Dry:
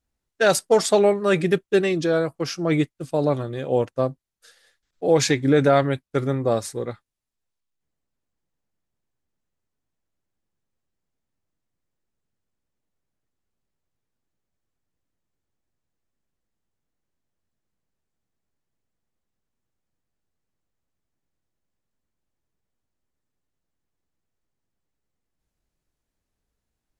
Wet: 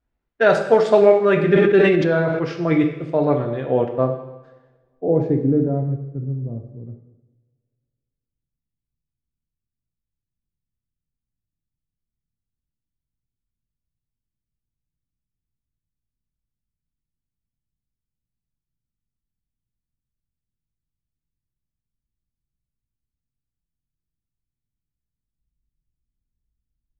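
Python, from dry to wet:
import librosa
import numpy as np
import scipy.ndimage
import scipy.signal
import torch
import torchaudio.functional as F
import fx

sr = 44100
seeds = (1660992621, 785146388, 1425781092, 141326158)

y = fx.filter_sweep_lowpass(x, sr, from_hz=2200.0, to_hz=140.0, start_s=3.83, end_s=6.19, q=0.8)
y = fx.rev_double_slope(y, sr, seeds[0], early_s=0.94, late_s=2.5, knee_db=-26, drr_db=3.5)
y = fx.sustainer(y, sr, db_per_s=26.0, at=(1.48, 2.45))
y = y * librosa.db_to_amplitude(2.0)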